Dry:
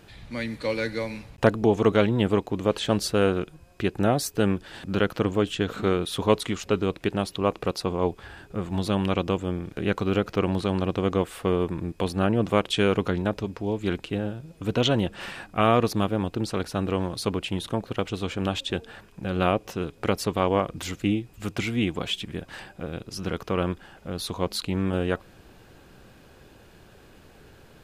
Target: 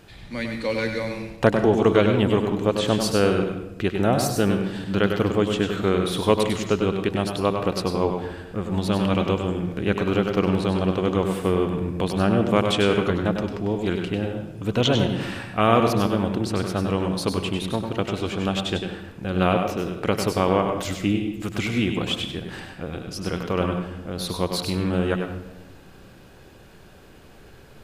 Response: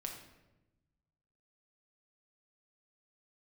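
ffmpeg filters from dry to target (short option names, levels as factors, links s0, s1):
-filter_complex "[0:a]asplit=2[s0][s1];[1:a]atrim=start_sample=2205,adelay=98[s2];[s1][s2]afir=irnorm=-1:irlink=0,volume=0.75[s3];[s0][s3]amix=inputs=2:normalize=0,volume=1.19"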